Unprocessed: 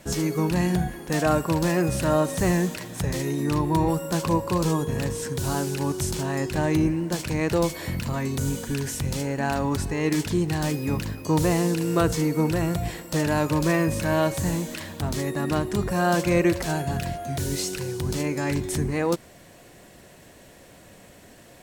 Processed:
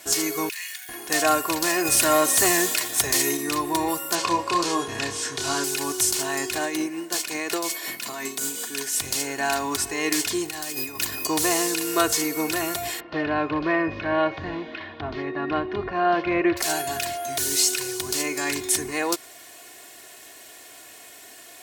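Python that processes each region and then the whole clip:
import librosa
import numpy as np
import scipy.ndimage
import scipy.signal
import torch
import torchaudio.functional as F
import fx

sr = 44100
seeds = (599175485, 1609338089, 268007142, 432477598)

y = fx.chain(x, sr, fx.crossing_spikes(level_db=-31.0),
    fx.ladder_highpass(hz=1700.0, resonance_pct=45), at=(0.49, 0.89))
y = fx.chain(y, sr, fx.leveller(passes=1),
    fx.high_shelf(hz=10000.0, db=4.0), at=(1.85, 3.37))
y = fx.chain(y, sr, fx.law_mismatch(coded='mu'),
    fx.lowpass(hz=5600.0, slope=12),
    fx.doubler(ms=29.0, db=-6.0), at=(4.15, 5.64))
y = fx.chain(y, sr, fx.highpass(hz=160.0, slope=24),
    fx.tremolo_shape(shape='triangle', hz=5.5, depth_pct=55), at=(6.58, 9.01))
y = fx.chain(y, sr, fx.high_shelf(hz=11000.0, db=7.0),
    fx.over_compress(threshold_db=-31.0, ratio=-1.0), at=(10.45, 11.27))
y = fx.chain(y, sr, fx.gaussian_blur(sigma=3.2),
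    fx.low_shelf(hz=180.0, db=8.0), at=(13.0, 16.57))
y = fx.highpass(y, sr, hz=970.0, slope=6)
y = fx.high_shelf(y, sr, hz=3900.0, db=6.5)
y = y + 0.63 * np.pad(y, (int(2.8 * sr / 1000.0), 0))[:len(y)]
y = y * 10.0 ** (4.0 / 20.0)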